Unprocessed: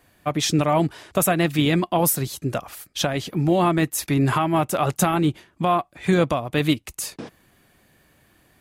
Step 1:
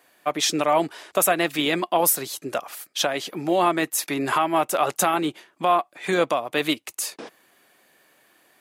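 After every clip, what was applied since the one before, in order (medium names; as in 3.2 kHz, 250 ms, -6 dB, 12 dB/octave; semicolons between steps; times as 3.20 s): high-pass 400 Hz 12 dB/octave; trim +1.5 dB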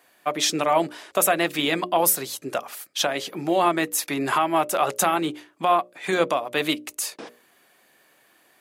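hum notches 60/120/180/240/300/360/420/480/540/600 Hz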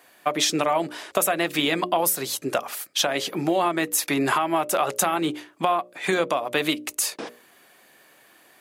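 compression, threshold -23 dBFS, peak gain reduction 9 dB; trim +4.5 dB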